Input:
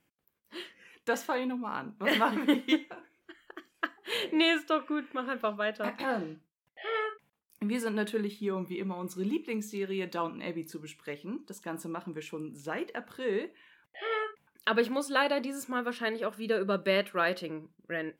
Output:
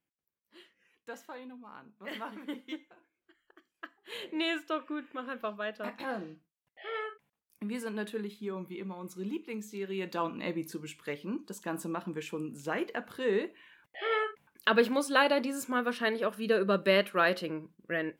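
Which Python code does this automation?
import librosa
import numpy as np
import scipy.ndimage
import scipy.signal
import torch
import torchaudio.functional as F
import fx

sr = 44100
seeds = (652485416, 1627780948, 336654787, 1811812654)

y = fx.gain(x, sr, db=fx.line((3.69, -14.0), (4.59, -5.0), (9.64, -5.0), (10.41, 2.0)))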